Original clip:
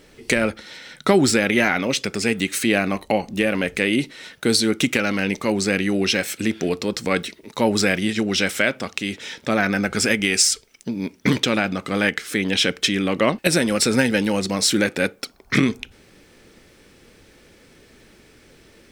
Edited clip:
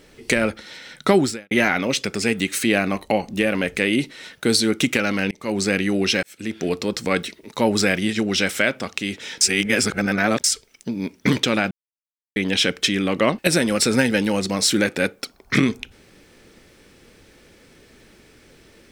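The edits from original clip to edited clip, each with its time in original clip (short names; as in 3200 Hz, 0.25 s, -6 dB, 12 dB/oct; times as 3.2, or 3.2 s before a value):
1.18–1.51 fade out quadratic
5.31–5.6 fade in
6.23–6.72 fade in
9.41–10.44 reverse
11.71–12.36 mute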